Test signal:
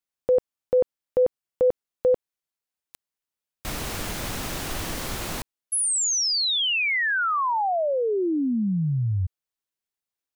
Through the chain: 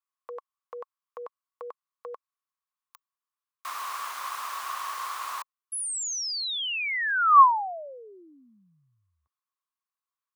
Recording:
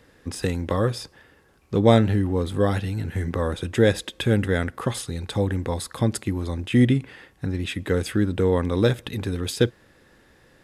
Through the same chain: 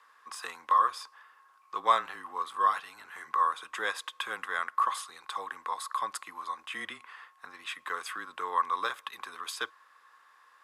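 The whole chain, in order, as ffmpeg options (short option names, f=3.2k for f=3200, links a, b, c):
-af "afreqshift=-21,highpass=f=1.1k:t=q:w=11,volume=-8dB"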